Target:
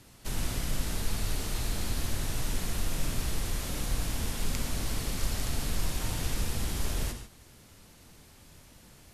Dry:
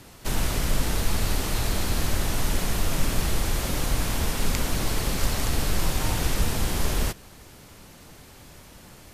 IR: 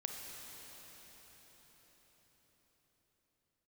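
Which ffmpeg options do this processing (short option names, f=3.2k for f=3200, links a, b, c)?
-filter_complex "[0:a]equalizer=f=760:w=0.38:g=-4[a];[1:a]atrim=start_sample=2205,atrim=end_sample=3969,asetrate=25137,aresample=44100[b];[a][b]afir=irnorm=-1:irlink=0,volume=-6.5dB"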